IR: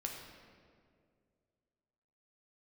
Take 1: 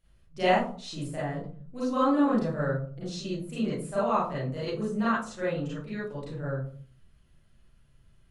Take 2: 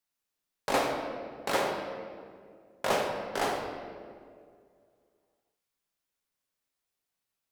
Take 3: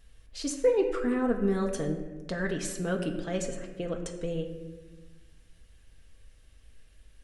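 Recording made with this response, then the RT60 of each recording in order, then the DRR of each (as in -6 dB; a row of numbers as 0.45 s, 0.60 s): 2; 0.45 s, 2.2 s, 1.3 s; -10.5 dB, 0.5 dB, 2.5 dB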